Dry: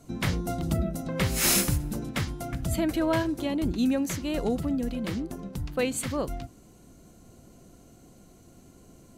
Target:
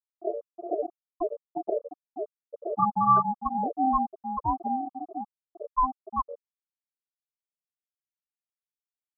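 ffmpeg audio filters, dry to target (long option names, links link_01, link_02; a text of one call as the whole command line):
ffmpeg -i in.wav -af "afftfilt=real='re*gte(hypot(re,im),0.316)':imag='im*gte(hypot(re,im),0.316)':win_size=1024:overlap=0.75,aeval=exprs='val(0)*sin(2*PI*520*n/s)':channel_layout=same,lowpass=frequency=1200:width_type=q:width=7.9" out.wav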